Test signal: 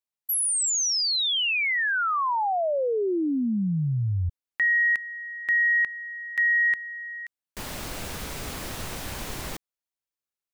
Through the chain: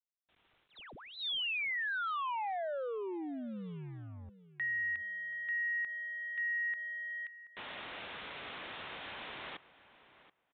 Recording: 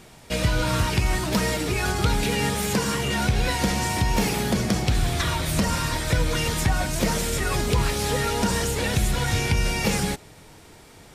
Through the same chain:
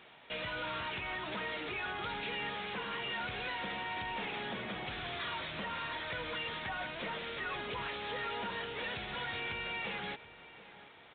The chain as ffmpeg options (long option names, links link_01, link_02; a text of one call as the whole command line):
ffmpeg -i in.wav -filter_complex "[0:a]highpass=frequency=1000:poles=1,asplit=2[link_01][link_02];[link_02]acompressor=threshold=-34dB:ratio=10:attack=37:release=68:knee=6:detection=rms,volume=-1.5dB[link_03];[link_01][link_03]amix=inputs=2:normalize=0,acrusher=bits=7:mix=0:aa=0.5,aresample=16000,asoftclip=type=tanh:threshold=-25dB,aresample=44100,asplit=2[link_04][link_05];[link_05]adelay=730,lowpass=frequency=2900:poles=1,volume=-16dB,asplit=2[link_06][link_07];[link_07]adelay=730,lowpass=frequency=2900:poles=1,volume=0.16[link_08];[link_04][link_06][link_08]amix=inputs=3:normalize=0,aresample=8000,aresample=44100,volume=-8dB" out.wav